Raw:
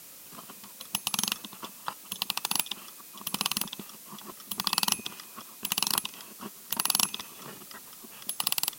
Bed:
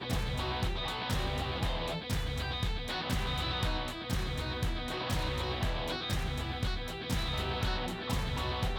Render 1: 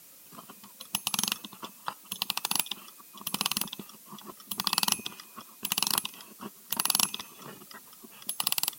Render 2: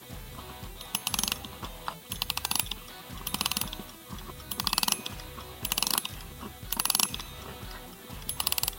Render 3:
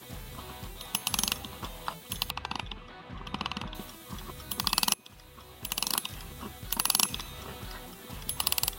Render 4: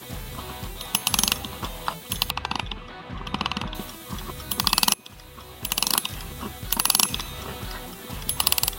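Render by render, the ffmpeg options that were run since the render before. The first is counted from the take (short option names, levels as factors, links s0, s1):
-af "afftdn=nr=6:nf=-49"
-filter_complex "[1:a]volume=0.299[s0];[0:a][s0]amix=inputs=2:normalize=0"
-filter_complex "[0:a]asettb=1/sr,asplit=3[s0][s1][s2];[s0]atrim=end=2.304[s3];[s1]atrim=start=2.3:end=3.75,asetpts=PTS-STARTPTS,afade=t=in:d=0.004:c=qsin,afade=t=out:st=1.446:d=0.004:c=qsin,lowpass=2500[s4];[s2]atrim=start=3.746[s5];[s3][s4]acrossfade=d=0.004:c1=hsin:c2=qsin[s6];[s6][s5]acrossfade=d=0.004:c1=qsin:c2=hsin,asplit=2[s7][s8];[s7]atrim=end=4.94,asetpts=PTS-STARTPTS,afade=t=out:st=4.936:d=0.004:c=hsin:silence=0.11885[s9];[s8]atrim=start=4.94,asetpts=PTS-STARTPTS,afade=t=in:d=1.35:silence=0.11885[s10];[s9][s10]concat=n=2:v=0:a=1"
-af "volume=2.37,alimiter=limit=0.891:level=0:latency=1"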